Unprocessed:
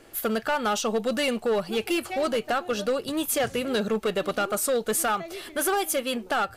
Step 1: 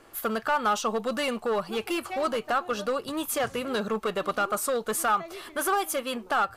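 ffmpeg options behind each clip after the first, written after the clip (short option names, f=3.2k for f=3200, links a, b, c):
-af "equalizer=f=1.1k:w=1.9:g=9.5,volume=-4dB"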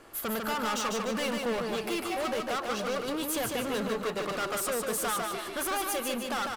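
-af "volume=31dB,asoftclip=hard,volume=-31dB,aecho=1:1:149|298|447|596|745:0.631|0.271|0.117|0.0502|0.0216,volume=1dB"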